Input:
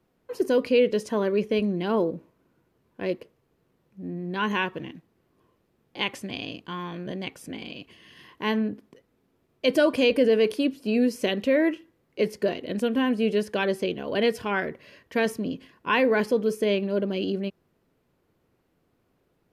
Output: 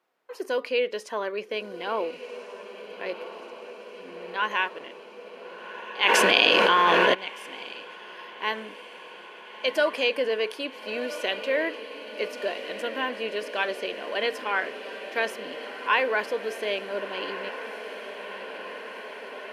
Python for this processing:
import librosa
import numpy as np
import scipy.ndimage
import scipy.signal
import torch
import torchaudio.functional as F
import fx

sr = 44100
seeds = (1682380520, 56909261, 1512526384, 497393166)

y = scipy.signal.sosfilt(scipy.signal.butter(2, 750.0, 'highpass', fs=sr, output='sos'), x)
y = fx.high_shelf(y, sr, hz=4700.0, db=-8.5)
y = fx.echo_diffused(y, sr, ms=1395, feedback_pct=76, wet_db=-11.0)
y = fx.env_flatten(y, sr, amount_pct=100, at=(6.02, 7.13), fade=0.02)
y = y * librosa.db_to_amplitude(3.0)